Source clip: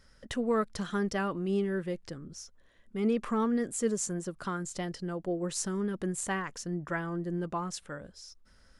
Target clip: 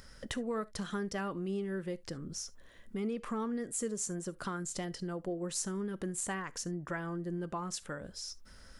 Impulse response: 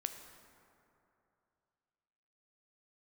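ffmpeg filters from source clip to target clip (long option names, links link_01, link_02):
-filter_complex "[0:a]acompressor=threshold=-46dB:ratio=2.5,asplit=2[link_01][link_02];[1:a]atrim=start_sample=2205,atrim=end_sample=3528,highshelf=frequency=6400:gain=10[link_03];[link_02][link_03]afir=irnorm=-1:irlink=0,volume=-3dB[link_04];[link_01][link_04]amix=inputs=2:normalize=0,acompressor=mode=upward:threshold=-57dB:ratio=2.5,volume=2dB"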